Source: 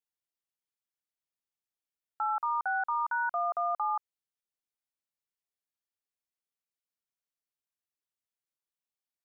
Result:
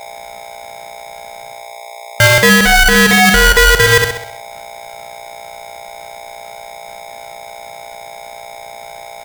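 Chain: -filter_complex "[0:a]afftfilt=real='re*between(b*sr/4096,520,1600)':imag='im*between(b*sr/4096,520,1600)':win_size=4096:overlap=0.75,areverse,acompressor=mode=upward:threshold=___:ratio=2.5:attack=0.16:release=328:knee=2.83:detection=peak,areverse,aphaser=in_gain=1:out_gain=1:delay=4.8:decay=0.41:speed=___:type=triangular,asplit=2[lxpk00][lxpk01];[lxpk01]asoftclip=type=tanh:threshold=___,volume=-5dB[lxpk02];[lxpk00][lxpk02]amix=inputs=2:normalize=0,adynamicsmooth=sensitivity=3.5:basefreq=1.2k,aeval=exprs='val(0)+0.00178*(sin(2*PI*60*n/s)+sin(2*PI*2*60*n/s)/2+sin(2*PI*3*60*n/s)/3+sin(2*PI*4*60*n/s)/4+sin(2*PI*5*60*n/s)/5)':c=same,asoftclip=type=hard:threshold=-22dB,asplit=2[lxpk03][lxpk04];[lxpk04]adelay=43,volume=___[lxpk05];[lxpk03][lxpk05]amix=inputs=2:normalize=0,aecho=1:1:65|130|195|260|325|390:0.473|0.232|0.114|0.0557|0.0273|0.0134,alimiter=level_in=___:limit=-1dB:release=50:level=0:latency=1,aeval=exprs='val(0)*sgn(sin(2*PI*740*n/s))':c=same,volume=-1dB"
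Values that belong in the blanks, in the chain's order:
-45dB, 0.43, -36dB, -9.5dB, 25dB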